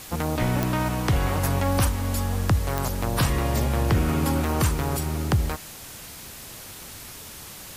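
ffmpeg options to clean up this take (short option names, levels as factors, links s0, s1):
-af "adeclick=t=4,afwtdn=0.01"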